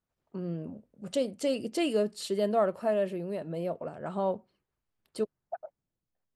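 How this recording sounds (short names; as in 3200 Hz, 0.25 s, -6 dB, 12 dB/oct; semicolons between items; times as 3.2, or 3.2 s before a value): noise floor -87 dBFS; spectral tilt -5.0 dB/oct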